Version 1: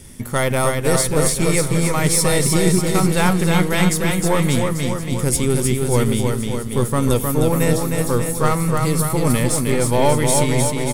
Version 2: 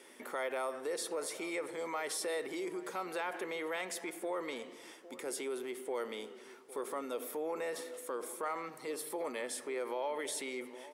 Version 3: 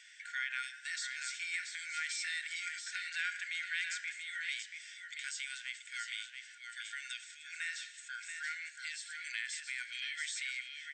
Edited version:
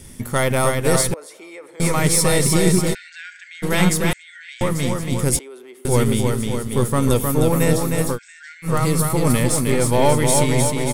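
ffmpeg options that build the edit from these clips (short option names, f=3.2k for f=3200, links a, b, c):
-filter_complex "[1:a]asplit=2[a][b];[2:a]asplit=3[c][d][e];[0:a]asplit=6[f][g][h][i][j][k];[f]atrim=end=1.142[l];[a]atrim=start=1.138:end=1.802[m];[g]atrim=start=1.798:end=2.95[n];[c]atrim=start=2.93:end=3.64[o];[h]atrim=start=3.62:end=4.132[p];[d]atrim=start=4.128:end=4.612[q];[i]atrim=start=4.608:end=5.392[r];[b]atrim=start=5.388:end=5.852[s];[j]atrim=start=5.848:end=8.19[t];[e]atrim=start=8.09:end=8.72[u];[k]atrim=start=8.62[v];[l][m]acrossfade=d=0.004:c1=hsin:c2=hsin[w];[w][n]acrossfade=d=0.004:c1=hsin:c2=hsin[x];[x][o]acrossfade=d=0.02:c1=tri:c2=tri[y];[y][p]acrossfade=d=0.02:c1=tri:c2=tri[z];[z][q]acrossfade=d=0.004:c1=hsin:c2=hsin[aa];[aa][r]acrossfade=d=0.004:c1=hsin:c2=hsin[ab];[ab][s]acrossfade=d=0.004:c1=hsin:c2=hsin[ac];[ac][t]acrossfade=d=0.004:c1=hsin:c2=hsin[ad];[ad][u]acrossfade=d=0.1:c1=tri:c2=tri[ae];[ae][v]acrossfade=d=0.1:c1=tri:c2=tri"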